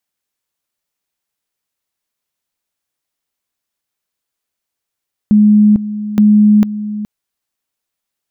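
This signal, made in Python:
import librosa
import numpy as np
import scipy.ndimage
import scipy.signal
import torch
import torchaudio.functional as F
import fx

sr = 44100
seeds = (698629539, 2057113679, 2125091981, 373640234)

y = fx.two_level_tone(sr, hz=210.0, level_db=-4.5, drop_db=13.5, high_s=0.45, low_s=0.42, rounds=2)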